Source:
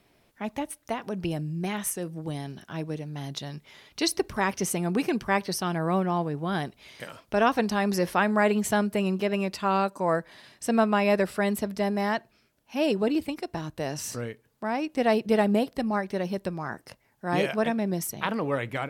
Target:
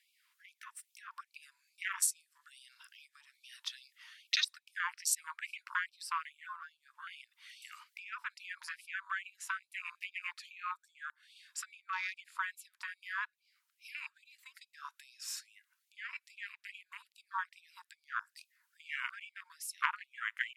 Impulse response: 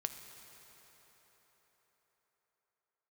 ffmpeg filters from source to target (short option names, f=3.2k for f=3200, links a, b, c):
-af "afwtdn=0.0158,highpass=320,acompressor=threshold=-39dB:ratio=10,asetrate=40517,aresample=44100,afftfilt=real='re*gte(b*sr/1024,890*pow(2300/890,0.5+0.5*sin(2*PI*2.4*pts/sr)))':imag='im*gte(b*sr/1024,890*pow(2300/890,0.5+0.5*sin(2*PI*2.4*pts/sr)))':win_size=1024:overlap=0.75,volume=12.5dB"